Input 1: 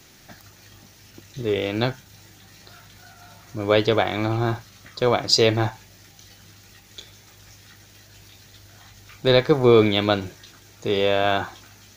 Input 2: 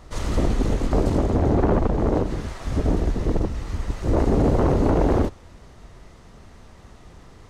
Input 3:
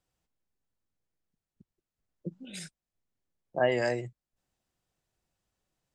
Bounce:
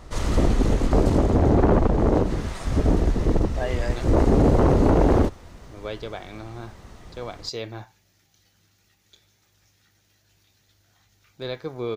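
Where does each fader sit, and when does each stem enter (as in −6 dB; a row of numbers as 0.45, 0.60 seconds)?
−15.0, +1.5, −3.5 decibels; 2.15, 0.00, 0.00 seconds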